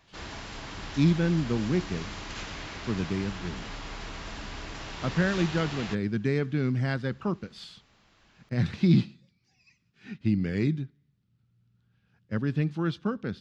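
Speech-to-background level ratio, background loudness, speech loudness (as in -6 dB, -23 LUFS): 10.5 dB, -39.0 LUFS, -28.5 LUFS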